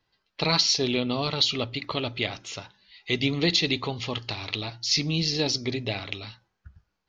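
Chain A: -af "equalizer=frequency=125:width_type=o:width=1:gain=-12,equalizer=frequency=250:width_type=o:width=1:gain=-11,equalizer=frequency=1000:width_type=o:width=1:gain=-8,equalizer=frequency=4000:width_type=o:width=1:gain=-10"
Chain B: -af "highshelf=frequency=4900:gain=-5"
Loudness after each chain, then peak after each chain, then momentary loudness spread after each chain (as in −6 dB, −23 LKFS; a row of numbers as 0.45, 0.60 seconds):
−33.5, −27.0 LKFS; −15.5, −10.0 dBFS; 14, 14 LU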